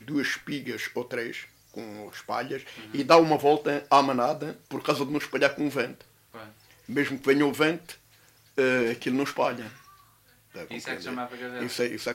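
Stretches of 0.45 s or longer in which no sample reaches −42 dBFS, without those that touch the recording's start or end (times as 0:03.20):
0:09.77–0:10.55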